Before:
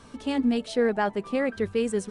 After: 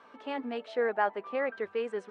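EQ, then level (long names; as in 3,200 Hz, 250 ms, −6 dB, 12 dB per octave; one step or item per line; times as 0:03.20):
band-pass filter 580–2,000 Hz
0.0 dB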